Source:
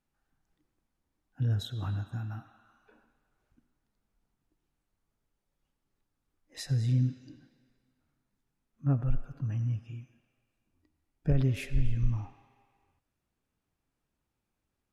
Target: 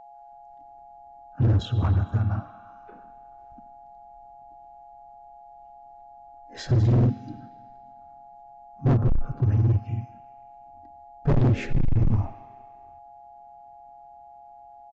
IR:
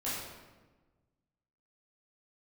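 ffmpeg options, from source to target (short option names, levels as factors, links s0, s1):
-filter_complex "[0:a]acrossover=split=1600[s0][s1];[s0]dynaudnorm=f=390:g=3:m=3.35[s2];[s2][s1]amix=inputs=2:normalize=0,aeval=exprs='val(0)+0.00447*sin(2*PI*830*n/s)':c=same,asplit=2[s3][s4];[s4]asetrate=37084,aresample=44100,atempo=1.18921,volume=0.794[s5];[s3][s5]amix=inputs=2:normalize=0,asoftclip=type=hard:threshold=0.15,aresample=16000,aresample=44100"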